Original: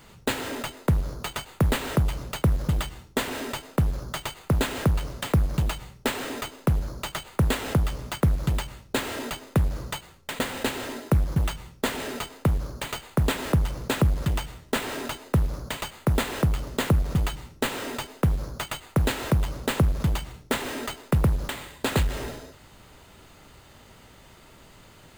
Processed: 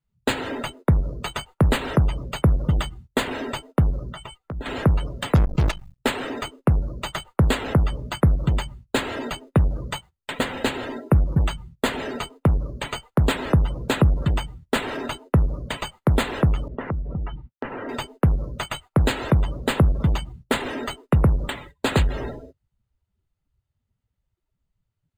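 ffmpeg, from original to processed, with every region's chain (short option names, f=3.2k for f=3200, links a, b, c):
-filter_complex "[0:a]asettb=1/sr,asplit=3[a][b][c];[a]atrim=end=4.104[d];[b]atrim=start=4.1:end=4.66,asetpts=PTS-STARTPTS,afade=t=in:d=0.004:c=qsin,afade=t=out:st=0.556:d=0.004:c=qsin,acompressor=threshold=-35dB:ratio=4:attack=3.2:release=140:knee=1:detection=peak,asplit=2[e][f];[f]adelay=17,volume=-12dB[g];[e][g]amix=inputs=2:normalize=0,atrim=end_sample=24696[h];[c]atrim=start=4.656[i];[d][h]acrossfade=d=0.004:c1=hsin:c2=qsin[j];[j][i]acrossfade=d=0.004:c1=qsin:c2=hsin,asettb=1/sr,asplit=3[k][l][m];[k]atrim=end=5.354[n];[l]atrim=start=5.35:end=5.99,asetpts=PTS-STARTPTS,afade=t=in:d=0.004:c=qsin,afade=t=out:st=0.636:d=0.004:c=qsin,acrossover=split=8000[o][p];[p]acompressor=threshold=-52dB:ratio=4:attack=1:release=60[q];[o][q]amix=inputs=2:normalize=0,acrusher=bits=5:dc=4:mix=0:aa=0.000001[r];[m]atrim=start=5.986[s];[n][r]acrossfade=d=0.004:c1=hsin:c2=qsin[t];[t][s]acrossfade=d=0.004:c1=qsin:c2=hsin,asettb=1/sr,asplit=3[u][v][w];[u]atrim=end=16.684[x];[v]atrim=start=16.68:end=17.89,asetpts=PTS-STARTPTS,afade=t=in:d=0.004:c=qsin,afade=t=out:st=1.206:d=0.004:c=qsin,agate=range=-33dB:threshold=-37dB:ratio=3:release=100:detection=peak,lowpass=2.3k,acompressor=threshold=-32dB:ratio=2.5:attack=3.2:release=140:knee=1:detection=peak[y];[w]atrim=start=17.886[z];[x][y]acrossfade=d=0.004:c1=hsin:c2=qsin[aa];[aa][z]acrossfade=d=0.004:c1=qsin:c2=hsin,afftdn=nr=25:nf=-38,agate=range=-18dB:threshold=-47dB:ratio=16:detection=peak,volume=4dB"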